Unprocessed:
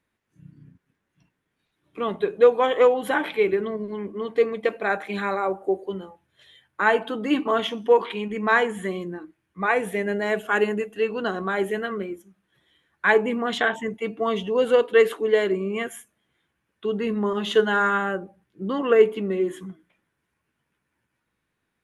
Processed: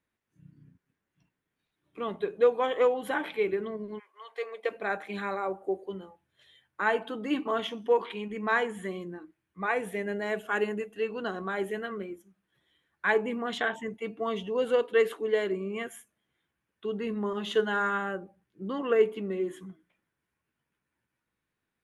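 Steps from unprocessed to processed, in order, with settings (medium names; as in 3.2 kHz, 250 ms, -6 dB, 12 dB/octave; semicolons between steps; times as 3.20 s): 3.98–4.70 s: high-pass 1.2 kHz -> 360 Hz 24 dB/octave; trim -7 dB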